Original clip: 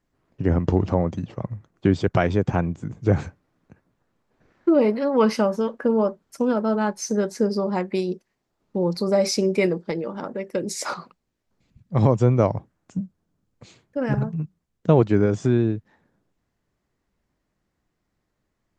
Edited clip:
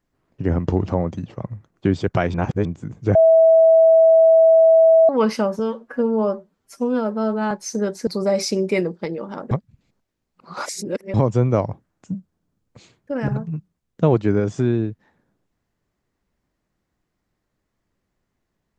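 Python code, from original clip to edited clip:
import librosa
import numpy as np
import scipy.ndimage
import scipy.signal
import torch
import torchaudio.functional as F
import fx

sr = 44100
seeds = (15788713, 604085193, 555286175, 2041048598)

y = fx.edit(x, sr, fx.reverse_span(start_s=2.34, length_s=0.31),
    fx.bleep(start_s=3.15, length_s=1.94, hz=651.0, db=-8.5),
    fx.stretch_span(start_s=5.59, length_s=1.28, factor=1.5),
    fx.cut(start_s=7.43, length_s=1.5),
    fx.reverse_span(start_s=10.37, length_s=1.63), tone=tone)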